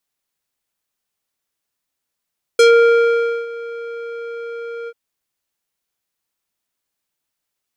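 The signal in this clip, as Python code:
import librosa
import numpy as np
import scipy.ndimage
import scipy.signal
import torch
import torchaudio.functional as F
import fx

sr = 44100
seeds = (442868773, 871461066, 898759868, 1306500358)

y = fx.sub_voice(sr, note=70, wave='square', cutoff_hz=1800.0, q=1.0, env_oct=2.5, env_s=0.13, attack_ms=4.9, decay_s=0.87, sustain_db=-20.0, release_s=0.05, note_s=2.29, slope=12)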